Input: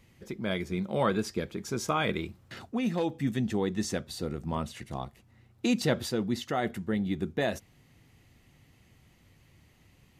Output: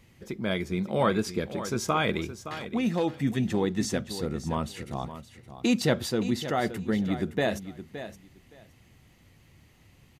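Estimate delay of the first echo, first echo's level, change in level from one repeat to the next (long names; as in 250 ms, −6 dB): 568 ms, −12.0 dB, −15.5 dB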